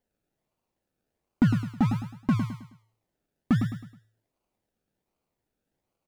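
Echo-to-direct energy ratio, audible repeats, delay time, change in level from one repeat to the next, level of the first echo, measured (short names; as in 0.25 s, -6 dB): -6.5 dB, 4, 0.106 s, -8.5 dB, -7.0 dB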